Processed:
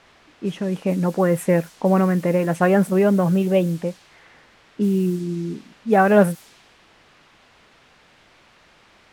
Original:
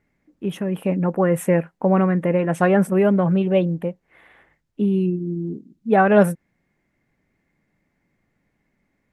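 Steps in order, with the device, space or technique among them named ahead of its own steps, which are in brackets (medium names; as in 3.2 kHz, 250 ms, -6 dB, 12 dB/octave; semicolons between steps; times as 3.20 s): cassette deck with a dynamic noise filter (white noise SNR 24 dB; level-controlled noise filter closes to 2.4 kHz, open at -16 dBFS)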